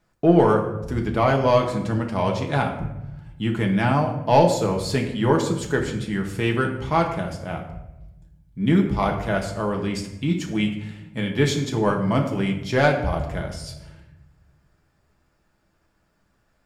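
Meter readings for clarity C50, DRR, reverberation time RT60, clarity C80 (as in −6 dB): 7.5 dB, 1.0 dB, 0.95 s, 10.0 dB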